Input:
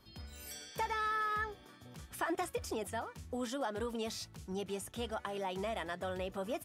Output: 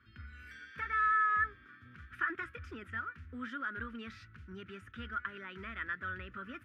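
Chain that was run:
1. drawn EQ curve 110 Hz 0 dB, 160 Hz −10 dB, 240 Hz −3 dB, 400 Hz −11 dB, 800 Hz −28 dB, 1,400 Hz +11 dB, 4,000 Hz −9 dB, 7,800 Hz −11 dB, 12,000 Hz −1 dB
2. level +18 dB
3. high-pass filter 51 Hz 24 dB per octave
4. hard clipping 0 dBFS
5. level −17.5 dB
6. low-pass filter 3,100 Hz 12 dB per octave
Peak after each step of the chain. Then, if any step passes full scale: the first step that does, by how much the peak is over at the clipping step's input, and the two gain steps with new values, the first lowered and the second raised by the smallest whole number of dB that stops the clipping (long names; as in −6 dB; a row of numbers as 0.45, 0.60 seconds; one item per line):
−20.0, −2.0, −2.0, −2.0, −19.5, −20.0 dBFS
no step passes full scale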